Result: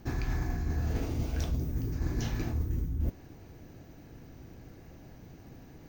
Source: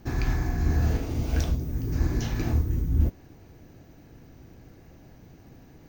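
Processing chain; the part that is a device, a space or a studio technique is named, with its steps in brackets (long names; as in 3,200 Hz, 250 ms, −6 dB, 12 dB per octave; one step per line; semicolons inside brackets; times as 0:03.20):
compression on the reversed sound (reversed playback; downward compressor 10 to 1, threshold −27 dBFS, peak gain reduction 12 dB; reversed playback)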